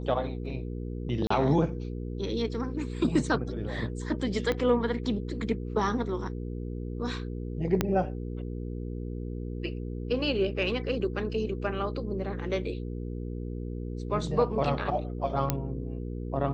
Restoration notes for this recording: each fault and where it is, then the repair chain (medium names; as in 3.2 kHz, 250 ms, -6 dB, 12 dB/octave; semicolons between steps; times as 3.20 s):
hum 60 Hz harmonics 8 -35 dBFS
1.27–1.30 s: dropout 34 ms
4.52 s: pop -16 dBFS
7.81 s: pop -10 dBFS
15.50 s: pop -9 dBFS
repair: de-click; de-hum 60 Hz, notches 8; interpolate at 1.27 s, 34 ms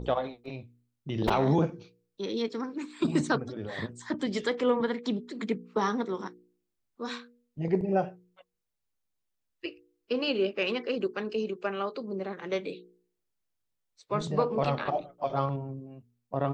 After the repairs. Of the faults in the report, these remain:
4.52 s: pop
7.81 s: pop